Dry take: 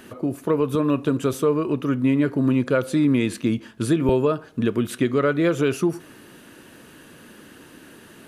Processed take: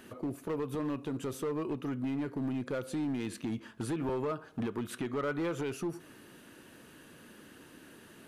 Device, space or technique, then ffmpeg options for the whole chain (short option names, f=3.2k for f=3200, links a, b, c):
limiter into clipper: -filter_complex "[0:a]alimiter=limit=-16.5dB:level=0:latency=1:release=225,asoftclip=type=hard:threshold=-21.5dB,asettb=1/sr,asplit=3[a][b][c];[a]atrim=end=3.564[d];[b]atrim=start=3.56:end=5.63,asetpts=PTS-STARTPTS,afade=t=in:d=0.004:c=qsin,afade=t=out:st=2.066:d=0.004:c=qsin,equalizer=f=1.1k:t=o:w=1.4:g=5[e];[c]atrim=start=5.626[f];[d][e]acrossfade=d=0.004:c1=hsin:c2=qsin[g];[g][f]acrossfade=d=0.004:c1=qsin:c2=hsin,volume=-8dB"